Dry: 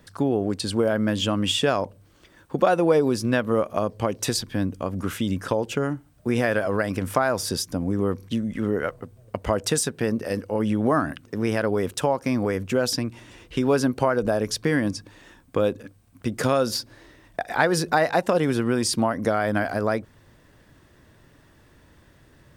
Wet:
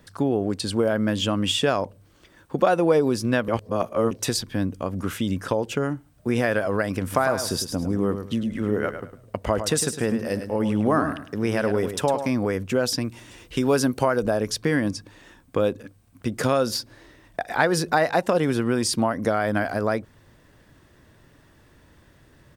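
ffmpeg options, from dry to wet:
-filter_complex "[0:a]asplit=3[a][b][c];[a]afade=t=out:st=7.11:d=0.02[d];[b]aecho=1:1:105|210|315:0.355|0.0887|0.0222,afade=t=in:st=7.11:d=0.02,afade=t=out:st=12.29:d=0.02[e];[c]afade=t=in:st=12.29:d=0.02[f];[d][e][f]amix=inputs=3:normalize=0,asettb=1/sr,asplit=3[g][h][i];[g]atrim=end=13.014[j];[h]atrim=start=13.01:end=14.25,asetpts=PTS-STARTPTS,afade=t=in:d=0.004:c=qsin,afade=t=out:st=1.236:d=0.004:c=qsin,highshelf=f=5.3k:g=8[k];[i]atrim=start=14.246[l];[j][k]acrossfade=d=0.004:c1=hsin:c2=qsin[m];[m][l]acrossfade=d=0.004:c1=qsin:c2=hsin,asplit=3[n][o][p];[n]atrim=end=3.482[q];[o]atrim=start=3.478:end=4.112,asetpts=PTS-STARTPTS,areverse[r];[p]atrim=start=4.108[s];[q][r]acrossfade=d=0.004:c1=hsin:c2=hsin[t];[t][s]acrossfade=d=0.004:c1=hsin:c2=hsin"

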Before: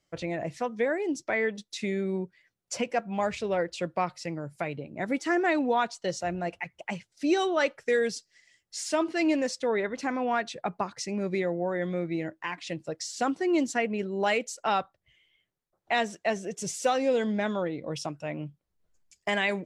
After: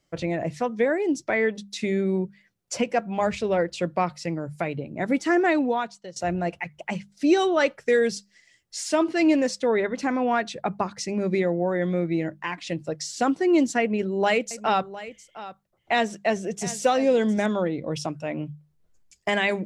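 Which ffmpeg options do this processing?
-filter_complex "[0:a]asettb=1/sr,asplit=3[a][b][c];[a]atrim=end=13.804[d];[b]atrim=start=13.8:end=17.46,asetpts=PTS-STARTPTS,afade=t=in:d=0.004:c=qsin,afade=t=out:st=3.656:d=0.004:c=qsin,aecho=1:1:708:0.168,atrim=end_sample=161406[e];[c]atrim=start=17.456[f];[d][e]acrossfade=d=0.004:c1=hsin:c2=qsin[g];[g][f]acrossfade=d=0.004:c1=qsin:c2=hsin,asplit=2[h][i];[h]atrim=end=6.16,asetpts=PTS-STARTPTS,afade=t=out:st=5.46:d=0.7:silence=0.0891251[j];[i]atrim=start=6.16,asetpts=PTS-STARTPTS,afade=t=in:d=0.004:c=hsin:silence=0.0891251[k];[j][k]concat=n=2:v=0:a=1,lowshelf=f=370:g=5,bandreject=f=50:t=h:w=6,bandreject=f=100:t=h:w=6,bandreject=f=150:t=h:w=6,bandreject=f=200:t=h:w=6,volume=3dB"

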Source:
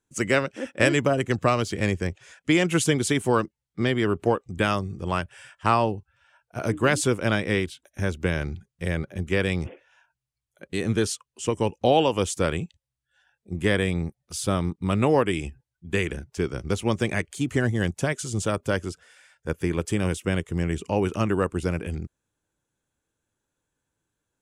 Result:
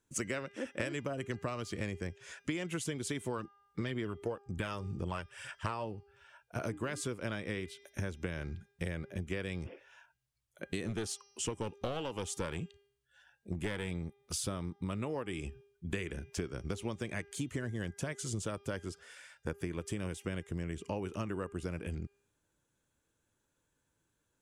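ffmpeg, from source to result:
-filter_complex "[0:a]asplit=3[a][b][c];[a]afade=t=out:st=3.37:d=0.02[d];[b]aphaser=in_gain=1:out_gain=1:delay=2.3:decay=0.39:speed=2:type=sinusoidal,afade=t=in:st=3.37:d=0.02,afade=t=out:st=5.83:d=0.02[e];[c]afade=t=in:st=5.83:d=0.02[f];[d][e][f]amix=inputs=3:normalize=0,asettb=1/sr,asplit=3[g][h][i];[g]atrim=end=10.864[j];[h]atrim=start=10.86:end=13.91,asetpts=PTS-STARTPTS,afade=t=in:d=0.004:c=qsin,afade=t=out:st=3.046:d=0.004:c=qsin,aeval=exprs='clip(val(0),-1,0.0841)':c=same[k];[i]atrim=start=13.906[l];[j][k]acrossfade=d=0.004:c1=hsin:c2=qsin[m];[m][l]acrossfade=d=0.004:c1=qsin:c2=hsin,bandreject=f=760:w=15,bandreject=f=402.6:t=h:w=4,bandreject=f=805.2:t=h:w=4,bandreject=f=1.2078k:t=h:w=4,bandreject=f=1.6104k:t=h:w=4,bandreject=f=2.013k:t=h:w=4,bandreject=f=2.4156k:t=h:w=4,bandreject=f=2.8182k:t=h:w=4,bandreject=f=3.2208k:t=h:w=4,bandreject=f=3.6234k:t=h:w=4,bandreject=f=4.026k:t=h:w=4,bandreject=f=4.4286k:t=h:w=4,bandreject=f=4.8312k:t=h:w=4,bandreject=f=5.2338k:t=h:w=4,bandreject=f=5.6364k:t=h:w=4,bandreject=f=6.039k:t=h:w=4,acompressor=threshold=-35dB:ratio=10,volume=1dB"

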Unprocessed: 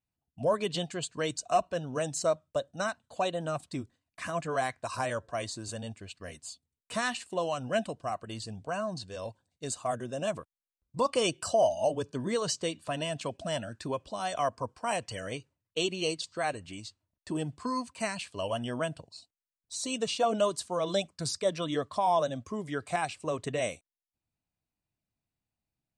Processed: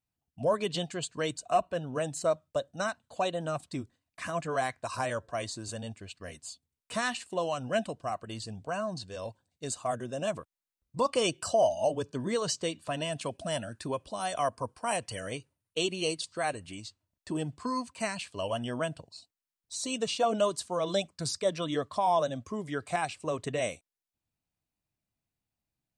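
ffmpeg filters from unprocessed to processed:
-filter_complex "[0:a]asettb=1/sr,asplit=3[a][b][c];[a]atrim=end=1.304[d];[b]atrim=start=1.3:end=2.31,asetpts=PTS-STARTPTS,afade=t=in:d=0.004:c=qsin,afade=t=out:st=1.006:d=0.004:c=qsin,equalizer=f=5.7k:t=o:w=0.77:g=-7.5[e];[c]atrim=start=2.306[f];[d][e]acrossfade=d=0.004:c1=hsin:c2=qsin[g];[g][f]acrossfade=d=0.004:c1=qsin:c2=hsin,asettb=1/sr,asplit=3[h][i][j];[h]atrim=end=13.124[k];[i]atrim=start=13.12:end=16.75,asetpts=PTS-STARTPTS,afade=t=in:d=0.004:c=qsin,afade=t=out:st=3.626:d=0.004:c=qsin,equalizer=f=9.5k:w=6.6:g=13.5[l];[j]atrim=start=16.746[m];[k][l]acrossfade=d=0.004:c1=hsin:c2=qsin[n];[n][m]acrossfade=d=0.004:c1=qsin:c2=hsin"

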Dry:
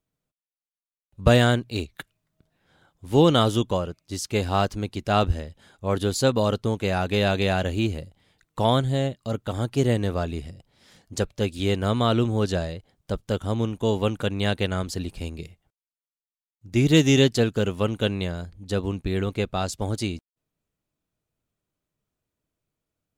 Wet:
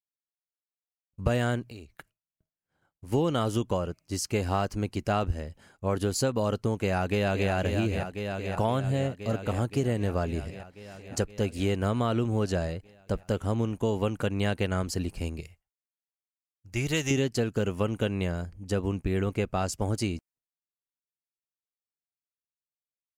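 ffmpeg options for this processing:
-filter_complex "[0:a]asettb=1/sr,asplit=3[a][b][c];[a]atrim=end=1.694[d];[b]atrim=start=1.69:end=3.12,asetpts=PTS-STARTPTS,afade=t=in:d=0.004:c=qsin,afade=t=out:st=1.426:d=0.004:c=qsin,acompressor=threshold=-39dB:ratio=12:attack=3.2:release=140:knee=1:detection=peak[e];[c]atrim=start=3.116[f];[d][e]acrossfade=d=0.004:c1=hsin:c2=qsin[g];[g][f]acrossfade=d=0.004:c1=qsin:c2=hsin,asplit=2[h][i];[i]afade=t=in:st=6.75:d=0.01,afade=t=out:st=7.51:d=0.01,aecho=0:1:520|1040|1560|2080|2600|3120|3640|4160|4680|5200|5720|6240:0.375837|0.281878|0.211409|0.158556|0.118917|0.089188|0.066891|0.0501682|0.0376262|0.0282196|0.0211647|0.0158735[j];[h][j]amix=inputs=2:normalize=0,asettb=1/sr,asplit=3[k][l][m];[k]atrim=end=15.404[n];[l]atrim=start=15.4:end=17.11,asetpts=PTS-STARTPTS,afade=t=in:d=0.004:c=qsin,afade=t=out:st=1.706:d=0.004:c=qsin,equalizer=f=240:w=0.64:g=-13.5[o];[m]atrim=start=17.106[p];[n][o]acrossfade=d=0.004:c1=hsin:c2=qsin[q];[q][p]acrossfade=d=0.004:c1=qsin:c2=hsin,asettb=1/sr,asplit=3[r][s][t];[r]atrim=end=17.724[u];[s]atrim=start=17.72:end=19.99,asetpts=PTS-STARTPTS,afade=t=in:d=0.004:c=qsin,afade=t=out:st=2.266:d=0.004:c=qsin,bandreject=f=4.2k:w=12[v];[t]atrim=start=19.986[w];[u][v]acrossfade=d=0.004:c1=hsin:c2=qsin[x];[x][w]acrossfade=d=0.004:c1=qsin:c2=hsin,agate=range=-33dB:threshold=-50dB:ratio=3:detection=peak,equalizer=f=3.6k:t=o:w=0.26:g=-12.5,acompressor=threshold=-23dB:ratio=5"

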